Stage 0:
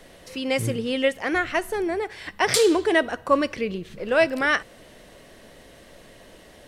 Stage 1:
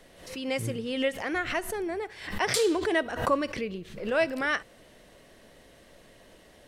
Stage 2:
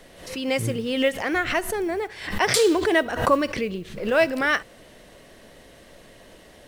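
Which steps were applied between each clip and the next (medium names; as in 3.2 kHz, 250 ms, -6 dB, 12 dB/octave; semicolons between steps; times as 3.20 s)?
swell ahead of each attack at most 86 dB/s; trim -6.5 dB
modulation noise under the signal 33 dB; trim +6 dB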